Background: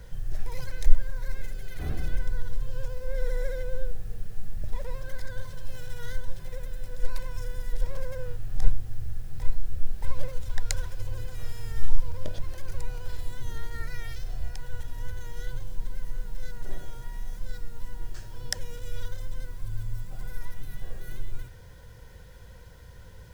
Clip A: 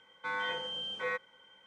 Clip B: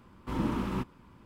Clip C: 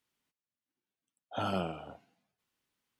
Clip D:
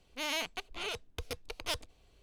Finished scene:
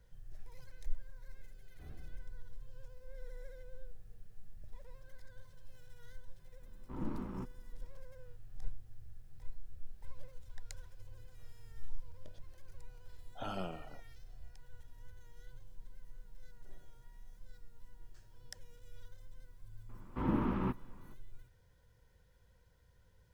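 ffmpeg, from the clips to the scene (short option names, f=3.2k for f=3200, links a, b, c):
-filter_complex "[2:a]asplit=2[a][b];[0:a]volume=-19.5dB[c];[a]adynamicsmooth=sensitivity=1.5:basefreq=1k[d];[b]lowpass=2k[e];[d]atrim=end=1.25,asetpts=PTS-STARTPTS,volume=-10dB,afade=t=in:d=0.004:c=hsin,afade=t=out:st=1.246:d=0.004:c=hsin,adelay=6620[f];[3:a]atrim=end=2.99,asetpts=PTS-STARTPTS,volume=-8dB,afade=t=in:d=0.004:c=hsin,afade=t=out:st=2.986:d=0.004:c=hsin,adelay=12040[g];[e]atrim=end=1.25,asetpts=PTS-STARTPTS,volume=-2dB,afade=t=in:d=0.004:c=hsin,afade=t=out:st=1.246:d=0.004:c=hsin,adelay=19890[h];[c][f][g][h]amix=inputs=4:normalize=0"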